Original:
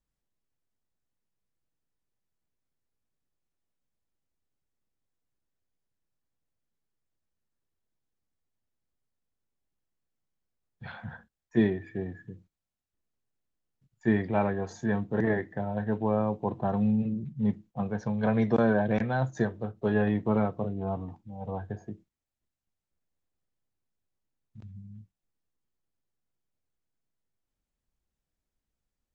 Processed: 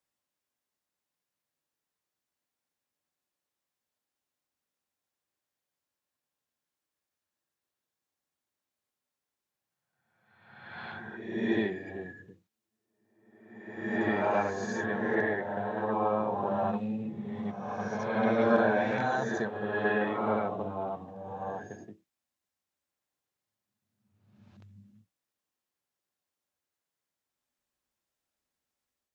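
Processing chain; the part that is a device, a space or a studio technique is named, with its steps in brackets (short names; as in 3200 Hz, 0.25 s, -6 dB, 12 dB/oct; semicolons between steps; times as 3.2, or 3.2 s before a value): ghost voice (reverse; reverb RT60 1.2 s, pre-delay 55 ms, DRR -3 dB; reverse; HPF 600 Hz 6 dB/oct)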